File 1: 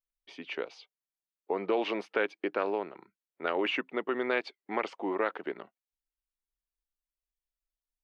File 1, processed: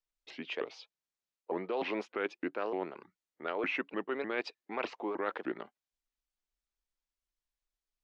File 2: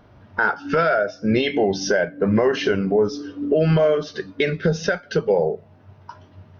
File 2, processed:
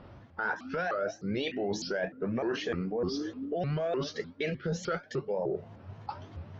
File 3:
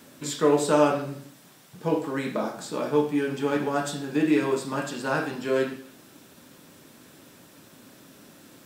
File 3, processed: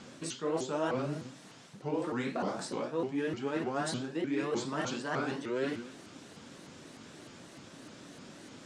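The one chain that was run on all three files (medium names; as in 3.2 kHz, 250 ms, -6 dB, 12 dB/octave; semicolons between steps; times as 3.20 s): reverse; compression 5:1, threshold -32 dBFS; reverse; low-pass 7.9 kHz 24 dB/octave; vibrato with a chosen wave saw up 3.3 Hz, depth 250 cents; trim +1 dB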